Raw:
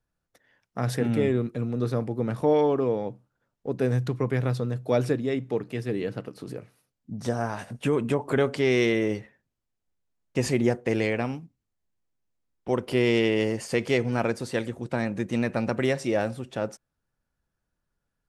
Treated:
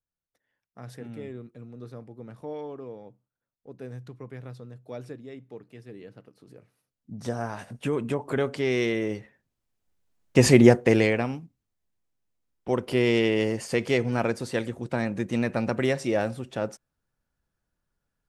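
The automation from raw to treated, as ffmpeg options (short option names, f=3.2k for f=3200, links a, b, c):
-af "volume=9dB,afade=t=in:st=6.49:d=0.73:silence=0.251189,afade=t=in:st=9.19:d=1.41:silence=0.251189,afade=t=out:st=10.6:d=0.66:silence=0.354813"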